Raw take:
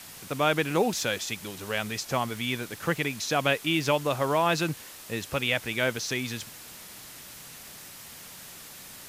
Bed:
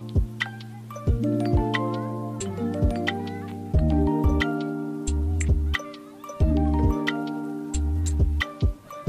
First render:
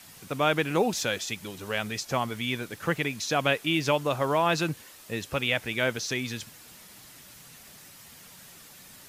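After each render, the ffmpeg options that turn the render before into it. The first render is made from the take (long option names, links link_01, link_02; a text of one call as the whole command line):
ffmpeg -i in.wav -af "afftdn=noise_reduction=6:noise_floor=-46" out.wav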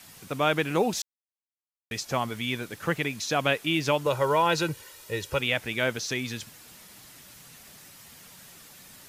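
ffmpeg -i in.wav -filter_complex "[0:a]asettb=1/sr,asplit=3[link_01][link_02][link_03];[link_01]atrim=end=4.064[link_04];[link_02]atrim=start=4.06:end=5.4,asetpts=PTS-STARTPTS,afade=type=in:duration=0.004:curve=qsin,afade=type=out:start_time=1.336:duration=0.004:curve=qsin,aecho=1:1:2.1:0.65,atrim=end_sample=59094[link_05];[link_03]atrim=start=5.396[link_06];[link_04][link_05]acrossfade=duration=0.004:curve1=hsin:curve2=qsin[link_07];[link_07][link_06]acrossfade=duration=0.004:curve1=qsin:curve2=hsin,asplit=3[link_08][link_09][link_10];[link_08]atrim=end=1.02,asetpts=PTS-STARTPTS,afade=type=out:start_time=1.016:duration=0.004:curve=hsin[link_11];[link_09]atrim=start=1.02:end=1.91,asetpts=PTS-STARTPTS,volume=0[link_12];[link_10]atrim=start=1.91,asetpts=PTS-STARTPTS,afade=type=in:duration=0.004:curve=hsin[link_13];[link_11][link_12][link_13]concat=n=3:v=0:a=1" out.wav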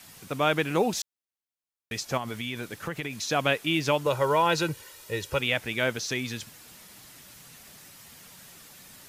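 ffmpeg -i in.wav -filter_complex "[0:a]asettb=1/sr,asplit=3[link_01][link_02][link_03];[link_01]atrim=end=2.174[link_04];[link_02]atrim=start=2.17:end=3.2,asetpts=PTS-STARTPTS,afade=type=in:duration=0.004:curve=qsin,afade=type=out:start_time=1.026:duration=0.004:curve=qsin,acompressor=threshold=-28dB:ratio=6:attack=3.2:release=140:knee=1:detection=peak[link_05];[link_03]atrim=start=3.196[link_06];[link_04][link_05]acrossfade=duration=0.004:curve1=hsin:curve2=qsin[link_07];[link_07][link_06]acrossfade=duration=0.004:curve1=qsin:curve2=hsin" out.wav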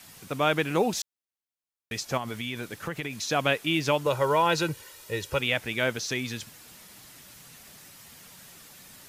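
ffmpeg -i in.wav -af anull out.wav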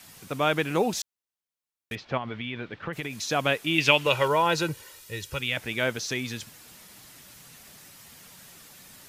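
ffmpeg -i in.wav -filter_complex "[0:a]asettb=1/sr,asplit=3[link_01][link_02][link_03];[link_01]atrim=end=1.954[link_04];[link_02]atrim=start=1.95:end=2.93,asetpts=PTS-STARTPTS,afade=type=in:duration=0.004:curve=qsin,afade=type=out:start_time=0.976:duration=0.004:curve=qsin,lowpass=frequency=3500:width=0.5412,lowpass=frequency=3500:width=1.3066[link_05];[link_03]atrim=start=2.926[link_06];[link_04][link_05]acrossfade=duration=0.004:curve1=hsin:curve2=qsin[link_07];[link_07][link_06]acrossfade=duration=0.004:curve1=qsin:curve2=hsin,asettb=1/sr,asplit=3[link_08][link_09][link_10];[link_08]atrim=end=3.784[link_11];[link_09]atrim=start=3.78:end=4.28,asetpts=PTS-STARTPTS,afade=type=in:duration=0.004:curve=qsin,afade=type=out:start_time=0.496:duration=0.004:curve=qsin,equalizer=frequency=2700:width=1.5:gain=15[link_12];[link_10]atrim=start=4.276[link_13];[link_11][link_12]acrossfade=duration=0.004:curve1=hsin:curve2=qsin[link_14];[link_14][link_13]acrossfade=duration=0.004:curve1=qsin:curve2=hsin,asettb=1/sr,asplit=3[link_15][link_16][link_17];[link_15]atrim=end=4.994[link_18];[link_16]atrim=start=4.99:end=5.57,asetpts=PTS-STARTPTS,afade=type=in:duration=0.004:curve=qsin,afade=type=out:start_time=0.576:duration=0.004:curve=qsin,equalizer=frequency=620:width_type=o:width=2.3:gain=-9[link_19];[link_17]atrim=start=5.566[link_20];[link_18][link_19]acrossfade=duration=0.004:curve1=hsin:curve2=qsin[link_21];[link_21][link_20]acrossfade=duration=0.004:curve1=qsin:curve2=hsin" out.wav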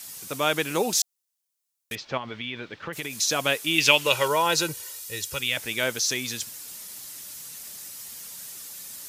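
ffmpeg -i in.wav -af "bass=frequency=250:gain=-5,treble=frequency=4000:gain=12,bandreject=frequency=720:width=18" out.wav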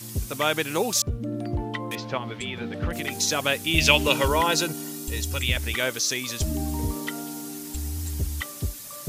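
ffmpeg -i in.wav -i bed.wav -filter_complex "[1:a]volume=-6.5dB[link_01];[0:a][link_01]amix=inputs=2:normalize=0" out.wav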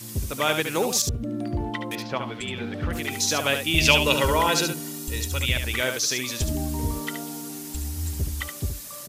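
ffmpeg -i in.wav -af "aecho=1:1:72:0.447" out.wav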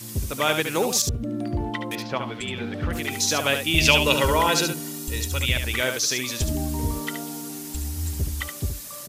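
ffmpeg -i in.wav -af "volume=1dB,alimiter=limit=-3dB:level=0:latency=1" out.wav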